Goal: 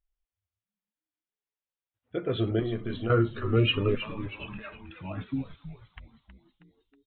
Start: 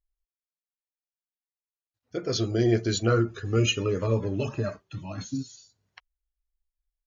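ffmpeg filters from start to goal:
-filter_complex "[0:a]asettb=1/sr,asplit=3[a][b][c];[a]atrim=end=2.594[d];[b]atrim=start=2.59:end=3.1,asetpts=PTS-STARTPTS,afade=t=in:d=0.004:c=qsin,afade=t=out:st=0.506:d=0.004:c=qsin,acompressor=threshold=-29dB:ratio=6[e];[c]atrim=start=3.096[f];[d][e]acrossfade=d=0.004:c1=hsin:c2=qsin[g];[g][f]acrossfade=d=0.004:c1=qsin:c2=hsin,asettb=1/sr,asplit=3[h][i][j];[h]atrim=end=3.954[k];[i]atrim=start=3.95:end=5.01,asetpts=PTS-STARTPTS,afade=t=in:d=0.004:c=qsin,afade=t=out:st=1.056:d=0.004:c=qsin,highpass=1.4k[l];[j]atrim=start=5.006[m];[k][l]acrossfade=d=0.004:c1=hsin:c2=qsin[n];[n][m]acrossfade=d=0.004:c1=qsin:c2=hsin,asplit=6[o][p][q][r][s][t];[p]adelay=319,afreqshift=-110,volume=-11dB[u];[q]adelay=638,afreqshift=-220,volume=-16.8dB[v];[r]adelay=957,afreqshift=-330,volume=-22.7dB[w];[s]adelay=1276,afreqshift=-440,volume=-28.5dB[x];[t]adelay=1595,afreqshift=-550,volume=-34.4dB[y];[o][u][v][w][x][y]amix=inputs=6:normalize=0,aresample=8000,aresample=44100"

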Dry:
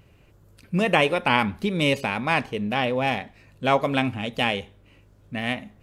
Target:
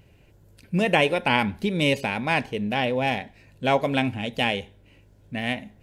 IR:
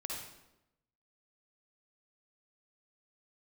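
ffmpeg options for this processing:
-af "equalizer=f=1.2k:t=o:w=0.22:g=-13.5"

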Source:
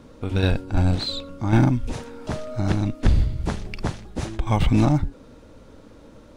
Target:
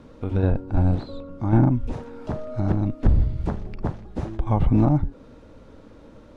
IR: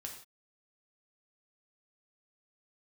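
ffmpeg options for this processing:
-filter_complex "[0:a]lowpass=f=3.4k:p=1,acrossover=split=1300[a][b];[b]acompressor=threshold=-53dB:ratio=5[c];[a][c]amix=inputs=2:normalize=0"

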